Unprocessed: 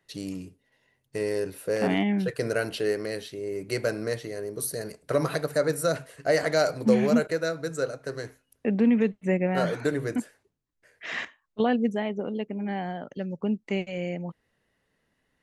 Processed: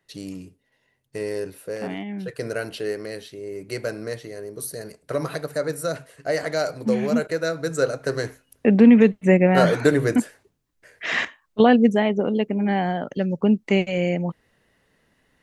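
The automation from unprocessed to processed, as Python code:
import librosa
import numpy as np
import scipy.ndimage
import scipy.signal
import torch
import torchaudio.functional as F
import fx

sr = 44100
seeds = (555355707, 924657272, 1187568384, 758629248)

y = fx.gain(x, sr, db=fx.line((1.45, 0.0), (2.06, -8.0), (2.39, -1.0), (7.01, -1.0), (8.02, 9.0)))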